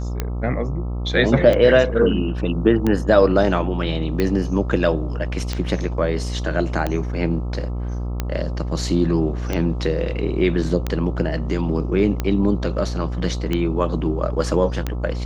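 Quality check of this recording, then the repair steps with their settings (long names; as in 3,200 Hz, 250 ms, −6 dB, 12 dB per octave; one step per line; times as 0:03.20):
mains buzz 60 Hz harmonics 22 −25 dBFS
scratch tick 45 rpm −9 dBFS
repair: click removal
hum removal 60 Hz, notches 22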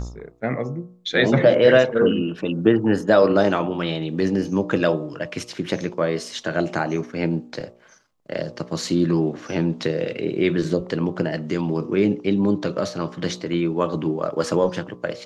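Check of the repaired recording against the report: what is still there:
none of them is left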